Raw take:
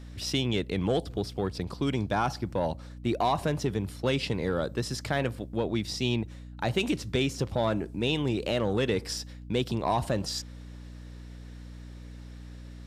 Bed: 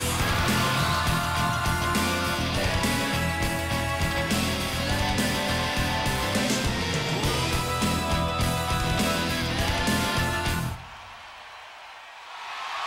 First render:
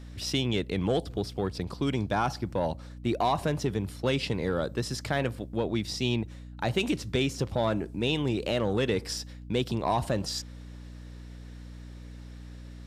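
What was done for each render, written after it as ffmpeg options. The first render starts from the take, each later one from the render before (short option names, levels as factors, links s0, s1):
-af anull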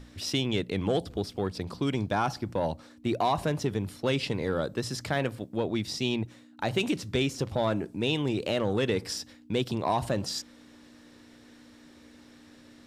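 -af "bandreject=f=60:t=h:w=6,bandreject=f=120:t=h:w=6,bandreject=f=180:t=h:w=6"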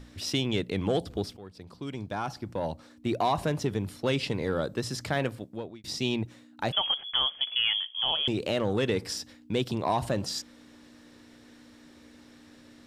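-filter_complex "[0:a]asettb=1/sr,asplit=3[s0][s1][s2];[s0]atrim=end=6.724[s3];[s1]atrim=start=6.72:end=8.28,asetpts=PTS-STARTPTS,afade=t=in:d=0.004:c=qsin,afade=t=out:st=1.556:d=0.004:c=qsin,lowpass=f=3000:t=q:w=0.5098,lowpass=f=3000:t=q:w=0.6013,lowpass=f=3000:t=q:w=0.9,lowpass=f=3000:t=q:w=2.563,afreqshift=-3500[s4];[s2]atrim=start=8.276[s5];[s3][s4]acrossfade=d=0.004:c1=hsin:c2=qsin[s6];[s6][s5]acrossfade=d=0.004:c1=qsin:c2=hsin,asplit=3[s7][s8][s9];[s7]atrim=end=1.37,asetpts=PTS-STARTPTS,afade=t=out:st=1.366:d=0.004:c=hsin:silence=0.141254[s10];[s8]atrim=start=1.37:end=5.84,asetpts=PTS-STARTPTS,afade=t=in:d=1.85:silence=0.141254,afade=t=out:st=3.9:d=0.57[s11];[s9]atrim=start=5.84,asetpts=PTS-STARTPTS,afade=t=in:d=0.004:c=hsin[s12];[s10][s11][s12]concat=n=3:v=0:a=1"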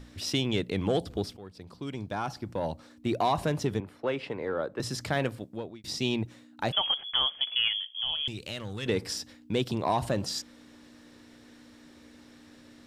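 -filter_complex "[0:a]asettb=1/sr,asplit=3[s0][s1][s2];[s0]atrim=end=3.804[s3];[s1]atrim=start=3.8:end=4.8,asetpts=PTS-STARTPTS,afade=t=in:d=0.004:c=qsin,afade=t=out:st=0.996:d=0.004:c=qsin,acrossover=split=320 2400:gain=0.251 1 0.126[s4][s5][s6];[s4][s5][s6]amix=inputs=3:normalize=0[s7];[s2]atrim=start=4.796[s8];[s3][s7]acrossfade=d=0.004:c1=hsin:c2=qsin[s9];[s9][s8]acrossfade=d=0.004:c1=qsin:c2=hsin,asettb=1/sr,asplit=3[s10][s11][s12];[s10]atrim=end=7.684[s13];[s11]atrim=start=7.68:end=8.86,asetpts=PTS-STARTPTS,afade=t=in:d=0.004:c=qsin,afade=t=out:st=1.176:d=0.004:c=qsin,equalizer=f=500:w=0.37:g=-15[s14];[s12]atrim=start=8.856[s15];[s13][s14]acrossfade=d=0.004:c1=hsin:c2=qsin[s16];[s16][s15]acrossfade=d=0.004:c1=qsin:c2=hsin"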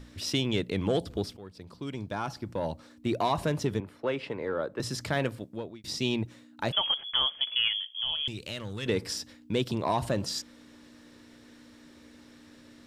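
-af "bandreject=f=760:w=12"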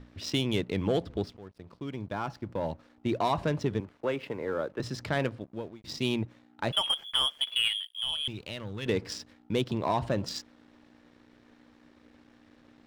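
-af "adynamicsmooth=sensitivity=5.5:basefreq=3200,aeval=exprs='sgn(val(0))*max(abs(val(0))-0.00119,0)':c=same"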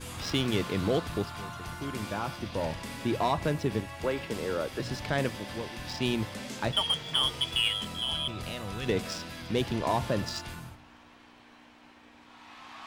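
-filter_complex "[1:a]volume=0.178[s0];[0:a][s0]amix=inputs=2:normalize=0"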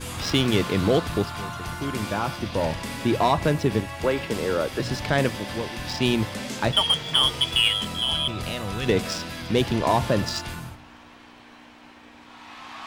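-af "volume=2.24"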